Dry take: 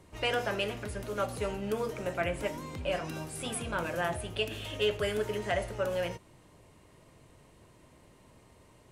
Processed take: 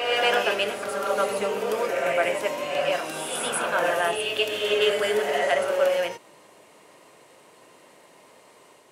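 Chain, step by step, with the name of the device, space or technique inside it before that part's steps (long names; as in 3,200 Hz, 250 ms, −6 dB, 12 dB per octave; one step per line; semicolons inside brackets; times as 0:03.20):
ghost voice (reversed playback; convolution reverb RT60 1.3 s, pre-delay 90 ms, DRR 0.5 dB; reversed playback; high-pass filter 400 Hz 12 dB per octave)
level +7.5 dB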